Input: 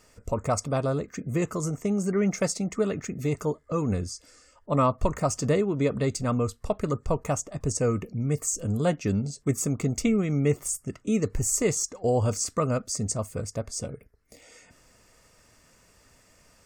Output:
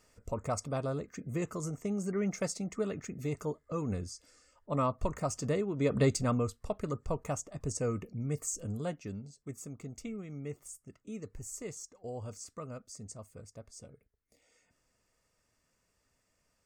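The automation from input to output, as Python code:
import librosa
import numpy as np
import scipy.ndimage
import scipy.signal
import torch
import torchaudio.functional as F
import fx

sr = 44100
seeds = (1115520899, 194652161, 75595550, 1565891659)

y = fx.gain(x, sr, db=fx.line((5.75, -8.0), (6.01, 0.5), (6.61, -8.0), (8.57, -8.0), (9.29, -17.5)))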